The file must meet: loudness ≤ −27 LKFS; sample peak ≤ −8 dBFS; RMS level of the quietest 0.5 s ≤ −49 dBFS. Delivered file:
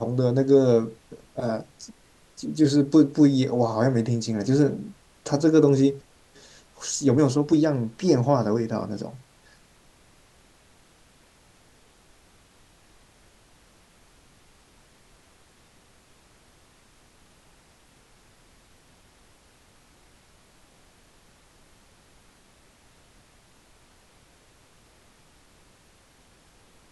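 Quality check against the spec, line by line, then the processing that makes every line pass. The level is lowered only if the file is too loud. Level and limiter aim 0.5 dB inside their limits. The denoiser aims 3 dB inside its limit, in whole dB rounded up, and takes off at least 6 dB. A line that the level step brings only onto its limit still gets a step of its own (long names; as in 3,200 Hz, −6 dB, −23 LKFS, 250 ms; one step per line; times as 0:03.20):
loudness −22.5 LKFS: out of spec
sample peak −5.5 dBFS: out of spec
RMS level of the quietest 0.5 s −57 dBFS: in spec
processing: level −5 dB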